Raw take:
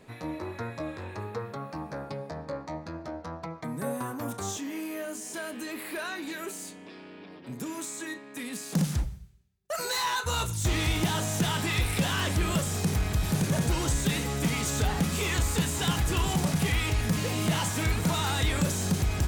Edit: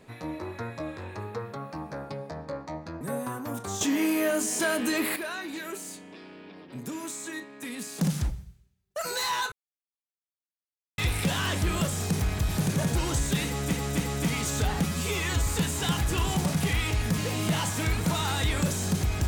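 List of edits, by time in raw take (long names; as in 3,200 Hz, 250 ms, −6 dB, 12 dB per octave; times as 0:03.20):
0:03.01–0:03.75: remove
0:04.55–0:05.90: clip gain +10 dB
0:10.26–0:11.72: silence
0:14.20–0:14.47: repeat, 3 plays
0:15.04–0:15.46: time-stretch 1.5×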